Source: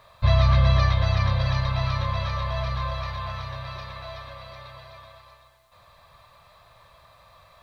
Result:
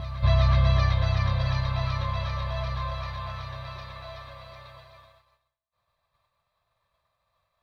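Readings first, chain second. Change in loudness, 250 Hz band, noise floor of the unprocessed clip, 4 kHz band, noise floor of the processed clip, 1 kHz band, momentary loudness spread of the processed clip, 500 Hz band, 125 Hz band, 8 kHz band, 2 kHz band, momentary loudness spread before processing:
-2.0 dB, -2.5 dB, -55 dBFS, -3.5 dB, -79 dBFS, -3.5 dB, 20 LU, -3.0 dB, -2.0 dB, no reading, -3.0 dB, 21 LU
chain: reverse echo 373 ms -13 dB; expander -41 dBFS; trim -3.5 dB

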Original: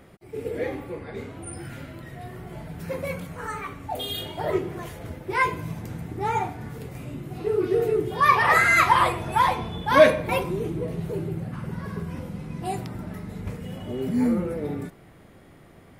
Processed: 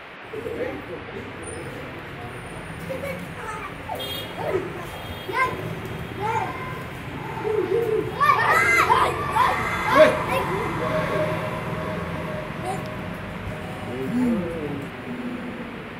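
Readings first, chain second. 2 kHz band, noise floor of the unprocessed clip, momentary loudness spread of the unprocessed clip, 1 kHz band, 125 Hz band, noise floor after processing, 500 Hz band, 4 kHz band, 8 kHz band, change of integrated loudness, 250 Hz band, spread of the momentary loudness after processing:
+1.5 dB, -51 dBFS, 20 LU, +1.0 dB, +0.5 dB, -36 dBFS, +1.0 dB, +1.5 dB, +1.0 dB, 0.0 dB, +1.0 dB, 17 LU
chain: band noise 180–2500 Hz -40 dBFS; on a send: echo that smears into a reverb 1103 ms, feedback 46%, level -8 dB

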